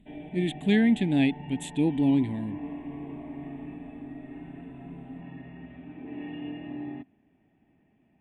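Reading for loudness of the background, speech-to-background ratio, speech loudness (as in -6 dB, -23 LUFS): -41.0 LUFS, 15.0 dB, -26.0 LUFS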